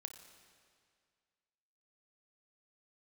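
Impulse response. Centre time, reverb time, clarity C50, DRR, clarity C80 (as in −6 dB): 28 ms, 2.1 s, 7.5 dB, 7.0 dB, 9.0 dB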